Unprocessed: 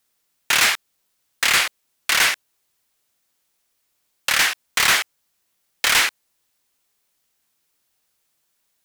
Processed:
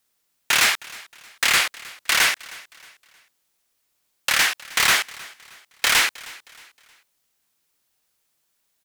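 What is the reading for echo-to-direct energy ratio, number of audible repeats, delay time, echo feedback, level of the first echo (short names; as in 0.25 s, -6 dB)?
-20.5 dB, 2, 0.313 s, 38%, -21.0 dB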